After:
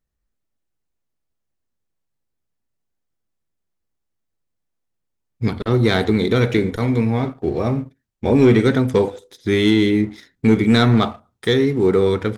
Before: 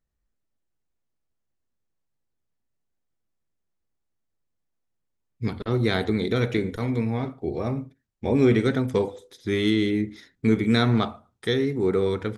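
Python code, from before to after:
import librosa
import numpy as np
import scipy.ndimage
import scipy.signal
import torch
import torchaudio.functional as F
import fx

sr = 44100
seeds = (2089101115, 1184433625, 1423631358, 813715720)

y = fx.leveller(x, sr, passes=1)
y = y * librosa.db_to_amplitude(3.5)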